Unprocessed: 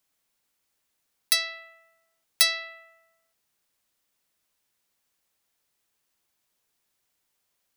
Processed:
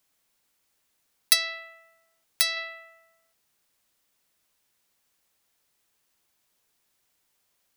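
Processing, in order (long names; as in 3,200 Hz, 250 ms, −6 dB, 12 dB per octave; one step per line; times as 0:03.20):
0:01.33–0:02.57: downward compressor 3 to 1, threshold −25 dBFS, peak gain reduction 8.5 dB
level +3.5 dB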